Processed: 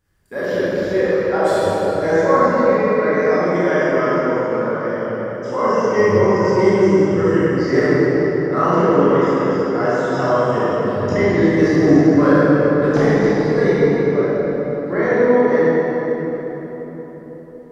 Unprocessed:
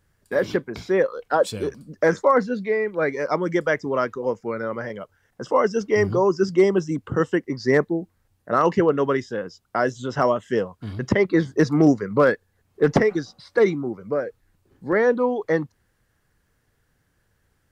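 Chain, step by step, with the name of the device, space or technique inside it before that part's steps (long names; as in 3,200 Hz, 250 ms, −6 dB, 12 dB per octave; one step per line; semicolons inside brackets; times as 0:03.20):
cathedral (convolution reverb RT60 4.6 s, pre-delay 18 ms, DRR −11 dB)
level −6 dB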